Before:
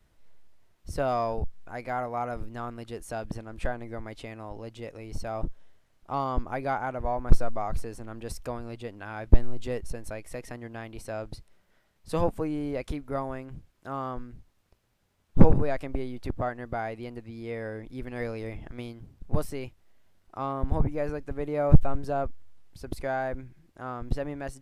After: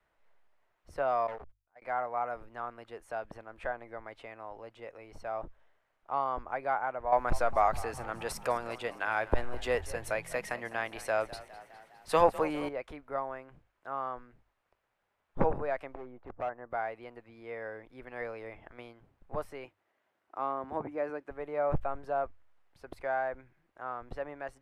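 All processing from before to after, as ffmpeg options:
-filter_complex "[0:a]asettb=1/sr,asplit=3[a][b][c];[a]atrim=end=1.274[d];[b]atrim=start=1.27:end=1.82,asetpts=PTS-STARTPTS,afade=t=in:d=0.004:c=qsin,afade=t=out:st=0.546:d=0.004:c=qsin,agate=range=-33dB:threshold=-33dB:ratio=16:release=100:detection=peak,asoftclip=type=hard:threshold=-32dB[e];[c]atrim=start=1.816[f];[d][e]acrossfade=d=0.004:c1=hsin:c2=qsin[g];[g][f]acrossfade=d=0.004:c1=qsin:c2=hsin,asettb=1/sr,asplit=3[h][i][j];[h]atrim=end=7.124[k];[i]atrim=start=7.12:end=12.69,asetpts=PTS-STARTPTS,afade=t=in:d=0.004:c=qsin,afade=t=out:st=5.566:d=0.004:c=qsin,highshelf=f=2.4k:g=11.5,acontrast=82,asplit=7[l][m][n][o][p][q][r];[m]adelay=204,afreqshift=40,volume=-17.5dB[s];[n]adelay=408,afreqshift=80,volume=-21.7dB[t];[o]adelay=612,afreqshift=120,volume=-25.8dB[u];[p]adelay=816,afreqshift=160,volume=-30dB[v];[q]adelay=1020,afreqshift=200,volume=-34.1dB[w];[r]adelay=1224,afreqshift=240,volume=-38.3dB[x];[l][s][t][u][v][w][x]amix=inputs=7:normalize=0,atrim=end_sample=245637[y];[j]atrim=start=12.686[z];[k][y]acrossfade=d=0.004:c1=hsin:c2=qsin[aa];[aa][z]acrossfade=d=0.004:c1=qsin:c2=hsin,asettb=1/sr,asplit=3[ab][ac][ad];[ab]atrim=end=15.944[ae];[ac]atrim=start=15.94:end=16.71,asetpts=PTS-STARTPTS,afade=t=in:d=0.004:c=qsin,afade=t=out:st=0.766:d=0.004:c=qsin,lowpass=1.2k,volume=26.5dB,asoftclip=hard,volume=-26.5dB[af];[ad]atrim=start=16.706[ag];[ae][af]acrossfade=d=0.004:c1=hsin:c2=qsin[ah];[ah][ag]acrossfade=d=0.004:c1=qsin:c2=hsin,asettb=1/sr,asplit=3[ai][aj][ak];[ai]atrim=end=19.654[al];[aj]atrim=start=19.65:end=21.3,asetpts=PTS-STARTPTS,afade=t=in:d=0.004:c=qsin,afade=t=out:st=1.646:d=0.004:c=qsin,highpass=140,equalizer=f=310:w=2.5:g=6.5[am];[ak]atrim=start=21.296[an];[al][am]acrossfade=d=0.004:c1=hsin:c2=qsin[ao];[ao][an]acrossfade=d=0.004:c1=qsin:c2=hsin,acrossover=split=490 2500:gain=0.141 1 0.158[ap][aq][ar];[ap][aq][ar]amix=inputs=3:normalize=0,bandreject=f=50:t=h:w=6,bandreject=f=100:t=h:w=6"

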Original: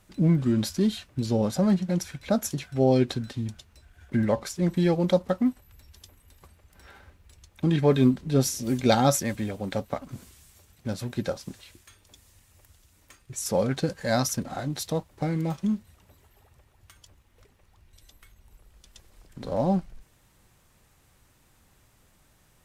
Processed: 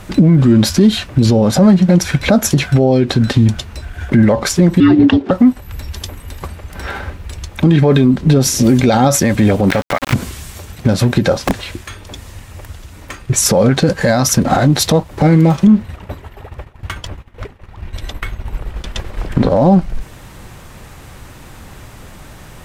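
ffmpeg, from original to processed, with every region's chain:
-filter_complex "[0:a]asettb=1/sr,asplit=3[a][b][c];[a]atrim=end=4.804[d];[b]atrim=start=4.8:end=5.31,asetpts=PTS-STARTPTS,afade=t=in:d=0.004:c=qsin,afade=t=out:st=0.506:d=0.004:c=qsin,afreqshift=-460,highpass=230,lowpass=3.4k[e];[c]atrim=start=5.306[f];[d][e]acrossfade=d=0.004:c1=hsin:c2=qsin[g];[g][f]acrossfade=d=0.004:c1=qsin:c2=hsin,asettb=1/sr,asplit=3[h][i][j];[h]atrim=end=9.704[k];[i]atrim=start=9.7:end=10.14,asetpts=PTS-STARTPTS,afade=t=in:d=0.004:c=qsin,afade=t=out:st=0.436:d=0.004:c=qsin,equalizer=f=2k:w=0.84:g=14,acompressor=mode=upward:threshold=-29dB:ratio=2.5:attack=3.2:release=140:knee=2.83:detection=peak,aeval=exprs='val(0)*gte(abs(val(0)),0.0211)':c=same[l];[j]atrim=start=10.136[m];[k][l]acrossfade=d=0.004:c1=hsin:c2=qsin[n];[n][m]acrossfade=d=0.004:c1=qsin:c2=hsin,asettb=1/sr,asplit=3[o][p][q];[o]atrim=end=11.394[r];[p]atrim=start=11.39:end=13.34,asetpts=PTS-STARTPTS,afade=t=in:d=0.004:c=qsin,afade=t=out:st=1.946:d=0.004:c=qsin,highshelf=f=3.9k:g=-5,aeval=exprs='(mod(37.6*val(0)+1,2)-1)/37.6':c=same[s];[q]atrim=start=13.336[t];[r][s]acrossfade=d=0.004:c1=hsin:c2=qsin[u];[u][t]acrossfade=d=0.004:c1=qsin:c2=hsin,asettb=1/sr,asplit=3[v][w][x];[v]atrim=end=15.674[y];[w]atrim=start=15.67:end=19.49,asetpts=PTS-STARTPTS,afade=t=in:d=0.004:c=qsin,afade=t=out:st=3.816:d=0.004:c=qsin,agate=range=-33dB:threshold=-53dB:ratio=3:release=100:detection=peak,bass=f=250:g=-1,treble=f=4k:g=-10,acontrast=80[z];[x]atrim=start=19.486[aa];[y][z]acrossfade=d=0.004:c1=hsin:c2=qsin[ab];[ab][aa]acrossfade=d=0.004:c1=qsin:c2=hsin,highshelf=f=4.2k:g=-8.5,acompressor=threshold=-34dB:ratio=2,alimiter=level_in=28dB:limit=-1dB:release=50:level=0:latency=1,volume=-1dB"

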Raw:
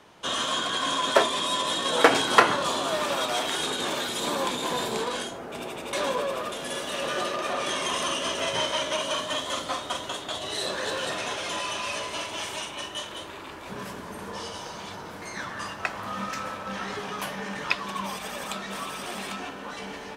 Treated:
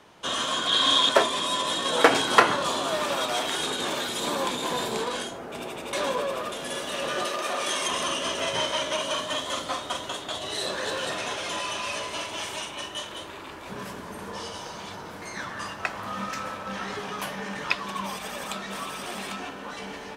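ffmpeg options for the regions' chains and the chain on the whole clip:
-filter_complex "[0:a]asettb=1/sr,asplit=3[a][b][c];[a]atrim=end=0.674[d];[b]atrim=start=0.67:end=1.09,asetpts=PTS-STARTPTS,afade=t=in:d=0.004:c=qsin,afade=t=out:st=0.416:d=0.004:c=qsin,equalizer=f=3.6k:w=2.8:g=11.5,asplit=2[e][f];[f]adelay=46,volume=-4.5dB[g];[e][g]amix=inputs=2:normalize=0,atrim=end_sample=18522[h];[c]atrim=start=1.086[i];[d][h]acrossfade=d=0.004:c1=hsin:c2=qsin[j];[j][i]acrossfade=d=0.004:c1=qsin:c2=hsin,asettb=1/sr,asplit=3[k][l][m];[k]atrim=end=7.254[n];[l]atrim=start=7.25:end=7.88,asetpts=PTS-STARTPTS,afade=t=in:d=0.004:c=qsin,afade=t=out:st=0.626:d=0.004:c=qsin,highpass=f=260:p=1,highshelf=f=6k:g=7.5[o];[m]atrim=start=7.876[p];[n][o]acrossfade=d=0.004:c1=hsin:c2=qsin[q];[q][p]acrossfade=d=0.004:c1=qsin:c2=hsin"

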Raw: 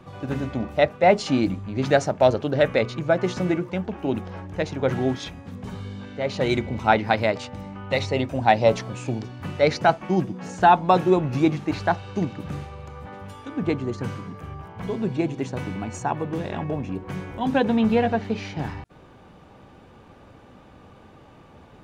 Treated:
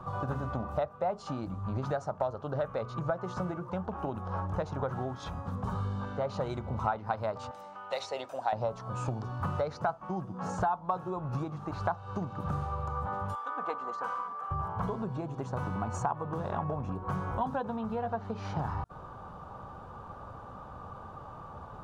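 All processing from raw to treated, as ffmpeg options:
-filter_complex "[0:a]asettb=1/sr,asplit=3[a][b][c];[a]atrim=end=7.514[d];[b]atrim=start=7.51:end=8.53,asetpts=PTS-STARTPTS,afade=t=in:d=0.004:c=qsin,afade=t=out:st=1.016:d=0.004:c=qsin,highpass=750,equalizer=f=1.1k:w=1.3:g=-11.5,acompressor=mode=upward:threshold=-45dB:ratio=2.5:attack=3.2:release=140:knee=2.83:detection=peak[e];[c]atrim=start=8.526[f];[d][e]acrossfade=d=0.004:c1=hsin:c2=qsin[g];[g][f]acrossfade=d=0.004:c1=qsin:c2=hsin,asettb=1/sr,asplit=3[h][i][j];[h]atrim=end=13.354[k];[i]atrim=start=13.35:end=14.51,asetpts=PTS-STARTPTS,afade=t=in:d=0.004:c=qsin,afade=t=out:st=1.156:d=0.004:c=qsin,highpass=790,highshelf=f=3.6k:g=-10,aecho=1:1:4:0.44,atrim=end_sample=51156[l];[j]atrim=start=14.506[m];[k][l]acrossfade=d=0.004:c1=hsin:c2=qsin[n];[n][m]acrossfade=d=0.004:c1=qsin:c2=hsin,highshelf=f=1.6k:t=q:w=3:g=-9.5,acompressor=threshold=-30dB:ratio=12,equalizer=f=300:w=1.1:g=-10.5,volume=4.5dB"

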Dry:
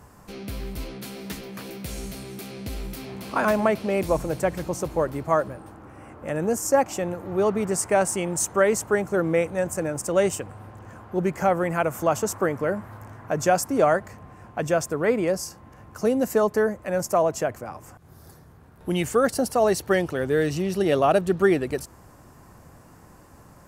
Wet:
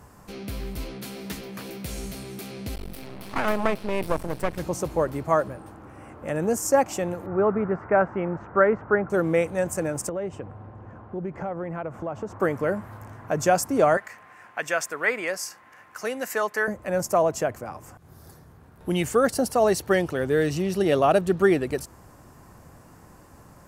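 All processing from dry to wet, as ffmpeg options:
-filter_complex "[0:a]asettb=1/sr,asplit=3[a][b][c];[a]atrim=end=2.754[d];[b]atrim=start=2.75:end=4.58,asetpts=PTS-STARTPTS,afade=t=in:d=0.004:c=qsin,afade=t=out:st=1.826:d=0.004:c=qsin,equalizer=f=6.8k:w=4.4:g=-9.5,acompressor=mode=upward:threshold=-31dB:ratio=2.5:attack=3.2:release=140:knee=2.83:detection=peak,aeval=exprs='max(val(0),0)':c=same[e];[c]atrim=start=4.576[f];[d][e]acrossfade=d=0.004:c1=hsin:c2=qsin[g];[g][f]acrossfade=d=0.004:c1=qsin:c2=hsin,asettb=1/sr,asplit=3[h][i][j];[h]atrim=end=7.264[k];[i]atrim=start=7.26:end=9.1,asetpts=PTS-STARTPTS,afade=t=in:d=0.004:c=qsin,afade=t=out:st=1.836:d=0.004:c=qsin,lowpass=f=1.9k:w=0.5412,lowpass=f=1.9k:w=1.3066,equalizer=f=1.4k:w=3.9:g=6[l];[j]atrim=start=9.096[m];[k][l]acrossfade=d=0.004:c1=hsin:c2=qsin[n];[n][m]acrossfade=d=0.004:c1=qsin:c2=hsin,asettb=1/sr,asplit=3[o][p][q];[o]atrim=end=10.094[r];[p]atrim=start=10.09:end=12.4,asetpts=PTS-STARTPTS,afade=t=in:d=0.004:c=qsin,afade=t=out:st=2.306:d=0.004:c=qsin,lowpass=f=1.2k:p=1,aemphasis=mode=reproduction:type=50fm,acompressor=threshold=-29dB:ratio=3:attack=3.2:release=140:knee=1:detection=peak[s];[q]atrim=start=12.396[t];[r][s]acrossfade=d=0.004:c1=hsin:c2=qsin[u];[u][t]acrossfade=d=0.004:c1=qsin:c2=hsin,asettb=1/sr,asplit=3[v][w][x];[v]atrim=end=13.974[y];[w]atrim=start=13.97:end=16.68,asetpts=PTS-STARTPTS,afade=t=in:d=0.004:c=qsin,afade=t=out:st=2.706:d=0.004:c=qsin,highpass=f=1.1k:p=1,equalizer=f=1.9k:t=o:w=1.2:g=9.5[z];[x]atrim=start=16.676[aa];[y][z]acrossfade=d=0.004:c1=hsin:c2=qsin[ab];[ab][aa]acrossfade=d=0.004:c1=qsin:c2=hsin"

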